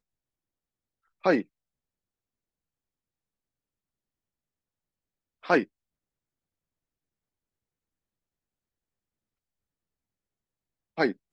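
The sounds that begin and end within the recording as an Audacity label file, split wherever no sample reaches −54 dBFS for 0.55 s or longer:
1.230000	1.440000	sound
5.430000	5.660000	sound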